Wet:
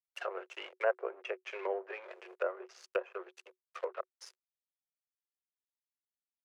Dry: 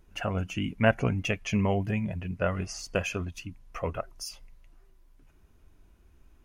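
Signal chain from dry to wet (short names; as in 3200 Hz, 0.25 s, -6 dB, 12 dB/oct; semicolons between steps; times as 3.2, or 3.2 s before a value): crossover distortion -39 dBFS; rippled Chebyshev high-pass 360 Hz, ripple 6 dB; treble ducked by the level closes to 950 Hz, closed at -32.5 dBFS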